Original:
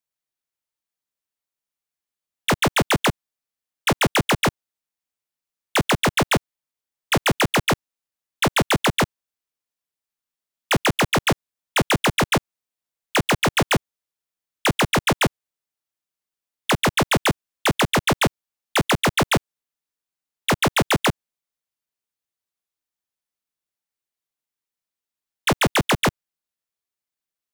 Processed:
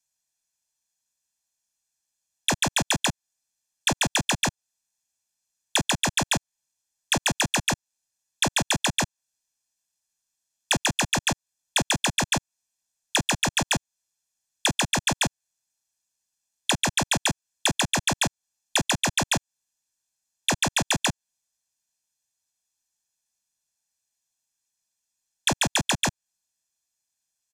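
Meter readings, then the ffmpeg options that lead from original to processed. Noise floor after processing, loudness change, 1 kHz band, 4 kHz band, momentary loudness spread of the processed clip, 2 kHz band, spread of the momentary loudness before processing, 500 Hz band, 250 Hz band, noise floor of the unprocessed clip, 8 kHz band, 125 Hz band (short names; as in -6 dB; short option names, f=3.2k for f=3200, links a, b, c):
under -85 dBFS, -3.5 dB, -6.0 dB, -1.0 dB, 5 LU, -4.5 dB, 5 LU, -9.5 dB, -7.0 dB, under -85 dBFS, +3.5 dB, -7.0 dB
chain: -filter_complex "[0:a]equalizer=f=6.7k:w=1.1:g=14.5,aecho=1:1:1.2:0.58,acrossover=split=440|4400[a][b][c];[a]acompressor=threshold=-28dB:ratio=4[d];[b]acompressor=threshold=-24dB:ratio=4[e];[c]acompressor=threshold=-29dB:ratio=4[f];[d][e][f]amix=inputs=3:normalize=0,aresample=32000,aresample=44100"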